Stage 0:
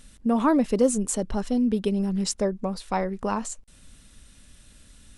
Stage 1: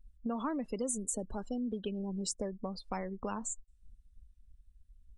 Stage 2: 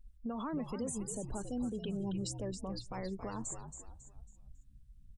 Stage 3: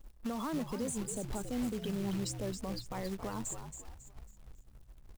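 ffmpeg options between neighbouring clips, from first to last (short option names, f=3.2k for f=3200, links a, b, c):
-filter_complex "[0:a]afftdn=nr=34:nf=-36,adynamicequalizer=threshold=0.00631:dfrequency=6600:dqfactor=0.76:tfrequency=6600:tqfactor=0.76:attack=5:release=100:ratio=0.375:range=3:mode=boostabove:tftype=bell,acrossover=split=320|1500|7500[a][b][c][d];[a]acompressor=threshold=-38dB:ratio=4[e];[b]acompressor=threshold=-37dB:ratio=4[f];[c]acompressor=threshold=-43dB:ratio=4[g];[d]acompressor=threshold=-34dB:ratio=4[h];[e][f][g][h]amix=inputs=4:normalize=0,volume=-3dB"
-filter_complex "[0:a]alimiter=level_in=8.5dB:limit=-24dB:level=0:latency=1:release=36,volume=-8.5dB,asplit=5[a][b][c][d][e];[b]adelay=274,afreqshift=-70,volume=-8dB[f];[c]adelay=548,afreqshift=-140,volume=-17.1dB[g];[d]adelay=822,afreqshift=-210,volume=-26.2dB[h];[e]adelay=1096,afreqshift=-280,volume=-35.4dB[i];[a][f][g][h][i]amix=inputs=5:normalize=0,volume=1dB"
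-af "acrusher=bits=3:mode=log:mix=0:aa=0.000001,volume=1.5dB"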